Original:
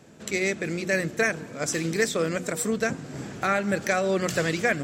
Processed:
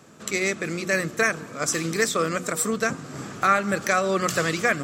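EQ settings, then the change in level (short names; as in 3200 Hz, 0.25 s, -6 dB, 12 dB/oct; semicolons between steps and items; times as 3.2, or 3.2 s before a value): HPF 74 Hz; bell 1200 Hz +11.5 dB 0.37 oct; high shelf 4100 Hz +5.5 dB; 0.0 dB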